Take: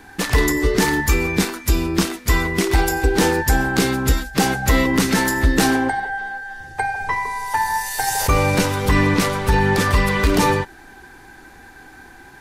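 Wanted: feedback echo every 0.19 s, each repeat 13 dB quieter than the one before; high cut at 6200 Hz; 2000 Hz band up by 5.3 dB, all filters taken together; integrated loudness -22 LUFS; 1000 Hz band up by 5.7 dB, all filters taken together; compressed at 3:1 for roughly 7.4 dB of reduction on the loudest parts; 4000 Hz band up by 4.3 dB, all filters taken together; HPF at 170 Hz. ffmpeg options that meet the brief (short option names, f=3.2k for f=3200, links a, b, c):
-af "highpass=170,lowpass=6.2k,equalizer=f=1k:t=o:g=6,equalizer=f=2k:t=o:g=3.5,equalizer=f=4k:t=o:g=5,acompressor=threshold=-20dB:ratio=3,aecho=1:1:190|380|570:0.224|0.0493|0.0108,volume=-0.5dB"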